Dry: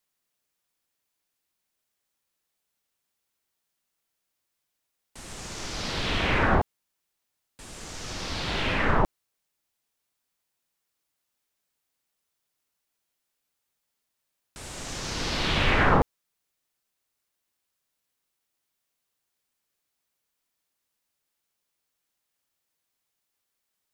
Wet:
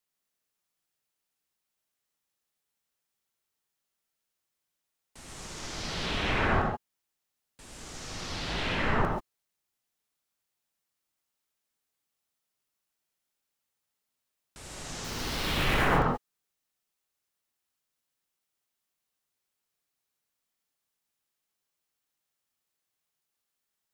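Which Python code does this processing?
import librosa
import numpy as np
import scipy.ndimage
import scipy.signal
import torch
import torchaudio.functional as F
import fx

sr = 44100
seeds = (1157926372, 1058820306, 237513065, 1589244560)

y = fx.dead_time(x, sr, dead_ms=0.055, at=(15.04, 15.85))
y = fx.rev_gated(y, sr, seeds[0], gate_ms=160, shape='rising', drr_db=2.0)
y = y * 10.0 ** (-5.5 / 20.0)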